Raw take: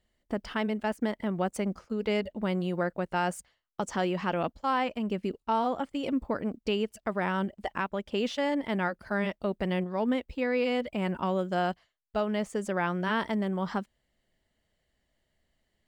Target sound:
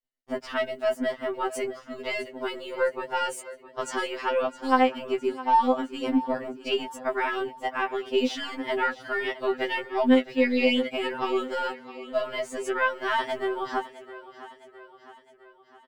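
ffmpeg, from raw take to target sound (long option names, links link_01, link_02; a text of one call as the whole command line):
ffmpeg -i in.wav -filter_complex "[0:a]asettb=1/sr,asplit=3[link_01][link_02][link_03];[link_01]atrim=end=9.264[link_04];[link_02]atrim=start=9.26:end=11.5,asetpts=PTS-STARTPTS,afade=type=in:duration=0.004:curve=qsin,afade=type=out:start_time=2.236:duration=0.004:curve=qsin,equalizer=frequency=2600:width_type=o:width=2.9:gain=4.5[link_05];[link_03]atrim=start=11.496[link_06];[link_04][link_05]acrossfade=duration=0.004:curve1=hsin:curve2=qsin[link_07];[link_07][link_06]acrossfade=duration=0.004:curve1=qsin:curve2=hsin,agate=range=-33dB:threshold=-60dB:ratio=3:detection=peak,equalizer=frequency=87:width_type=o:width=2.1:gain=-5.5,aecho=1:1:660|1320|1980|2640|3300:0.15|0.0808|0.0436|0.0236|0.0127,aeval=exprs='0.158*(cos(1*acos(clip(val(0)/0.158,-1,1)))-cos(1*PI/2))+0.0112*(cos(2*acos(clip(val(0)/0.158,-1,1)))-cos(2*PI/2))':channel_layout=same,afftfilt=real='re*2.45*eq(mod(b,6),0)':imag='im*2.45*eq(mod(b,6),0)':win_size=2048:overlap=0.75,volume=6.5dB" out.wav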